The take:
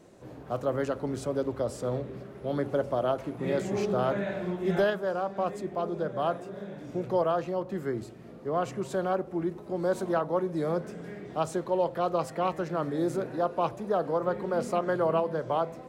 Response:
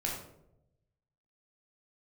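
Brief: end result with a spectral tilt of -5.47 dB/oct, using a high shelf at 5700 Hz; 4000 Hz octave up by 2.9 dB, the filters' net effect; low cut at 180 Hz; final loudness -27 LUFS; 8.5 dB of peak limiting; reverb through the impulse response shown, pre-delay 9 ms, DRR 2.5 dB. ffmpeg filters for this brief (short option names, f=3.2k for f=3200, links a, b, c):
-filter_complex "[0:a]highpass=180,equalizer=f=4k:t=o:g=6,highshelf=f=5.7k:g=-6,alimiter=limit=-24dB:level=0:latency=1,asplit=2[a][b];[1:a]atrim=start_sample=2205,adelay=9[c];[b][c]afir=irnorm=-1:irlink=0,volume=-6.5dB[d];[a][d]amix=inputs=2:normalize=0,volume=4.5dB"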